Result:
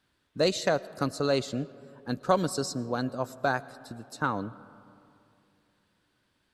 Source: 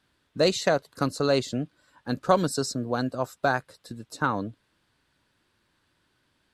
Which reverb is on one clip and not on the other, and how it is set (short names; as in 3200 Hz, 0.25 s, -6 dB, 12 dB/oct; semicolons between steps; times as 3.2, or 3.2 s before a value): digital reverb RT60 2.8 s, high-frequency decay 0.35×, pre-delay 70 ms, DRR 18.5 dB; gain -3 dB